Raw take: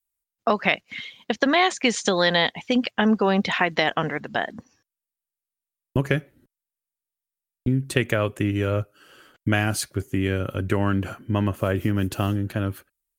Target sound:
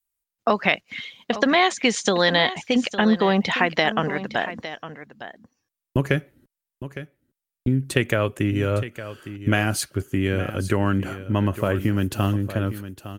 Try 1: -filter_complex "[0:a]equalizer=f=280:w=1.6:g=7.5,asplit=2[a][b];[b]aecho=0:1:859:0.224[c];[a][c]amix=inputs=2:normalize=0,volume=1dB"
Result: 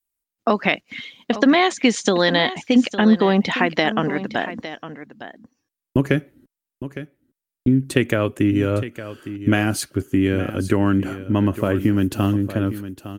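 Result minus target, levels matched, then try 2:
250 Hz band +3.0 dB
-filter_complex "[0:a]asplit=2[a][b];[b]aecho=0:1:859:0.224[c];[a][c]amix=inputs=2:normalize=0,volume=1dB"

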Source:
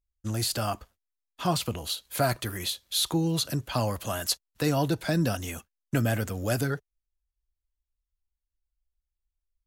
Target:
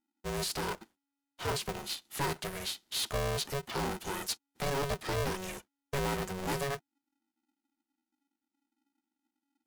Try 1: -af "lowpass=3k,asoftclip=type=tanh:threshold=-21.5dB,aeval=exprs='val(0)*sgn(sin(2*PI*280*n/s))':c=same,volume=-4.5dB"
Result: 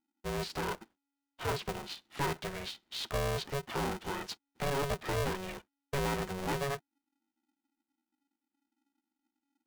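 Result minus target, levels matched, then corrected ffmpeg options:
8000 Hz band -5.0 dB
-af "lowpass=12k,asoftclip=type=tanh:threshold=-21.5dB,aeval=exprs='val(0)*sgn(sin(2*PI*280*n/s))':c=same,volume=-4.5dB"

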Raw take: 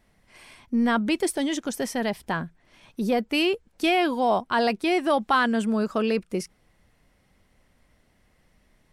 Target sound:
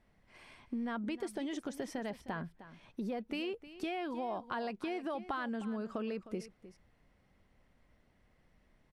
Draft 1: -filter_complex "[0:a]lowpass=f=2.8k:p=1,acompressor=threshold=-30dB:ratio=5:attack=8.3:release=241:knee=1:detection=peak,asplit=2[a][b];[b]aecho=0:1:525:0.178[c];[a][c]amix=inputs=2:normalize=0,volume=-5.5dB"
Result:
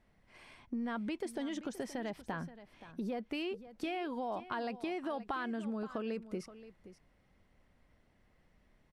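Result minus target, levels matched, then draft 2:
echo 0.216 s late
-filter_complex "[0:a]lowpass=f=2.8k:p=1,acompressor=threshold=-30dB:ratio=5:attack=8.3:release=241:knee=1:detection=peak,asplit=2[a][b];[b]aecho=0:1:309:0.178[c];[a][c]amix=inputs=2:normalize=0,volume=-5.5dB"

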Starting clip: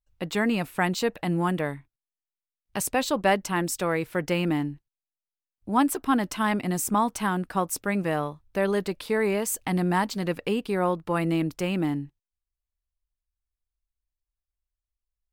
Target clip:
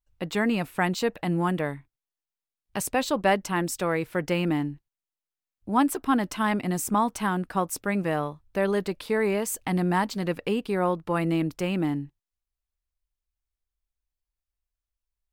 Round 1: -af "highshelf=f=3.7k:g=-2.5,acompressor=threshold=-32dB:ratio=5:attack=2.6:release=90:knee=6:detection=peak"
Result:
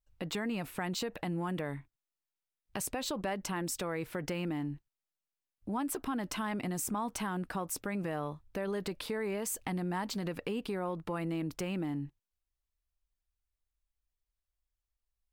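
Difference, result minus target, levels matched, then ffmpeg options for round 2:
compressor: peak gain reduction +15 dB
-af "highshelf=f=3.7k:g=-2.5"

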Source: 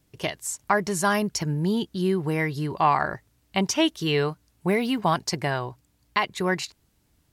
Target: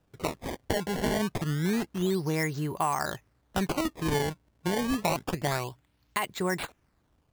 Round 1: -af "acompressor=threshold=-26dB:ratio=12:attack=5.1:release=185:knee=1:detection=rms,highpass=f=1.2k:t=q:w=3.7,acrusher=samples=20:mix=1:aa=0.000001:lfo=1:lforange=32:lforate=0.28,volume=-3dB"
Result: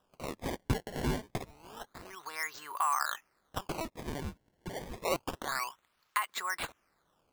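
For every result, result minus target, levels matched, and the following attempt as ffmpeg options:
compressor: peak gain reduction +7.5 dB; 1000 Hz band +3.0 dB
-af "acompressor=threshold=-18dB:ratio=12:attack=5.1:release=185:knee=1:detection=rms,highpass=f=1.2k:t=q:w=3.7,acrusher=samples=20:mix=1:aa=0.000001:lfo=1:lforange=32:lforate=0.28,volume=-3dB"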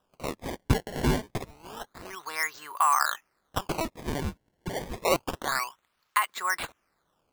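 1000 Hz band +3.0 dB
-af "acompressor=threshold=-18dB:ratio=12:attack=5.1:release=185:knee=1:detection=rms,acrusher=samples=20:mix=1:aa=0.000001:lfo=1:lforange=32:lforate=0.28,volume=-3dB"

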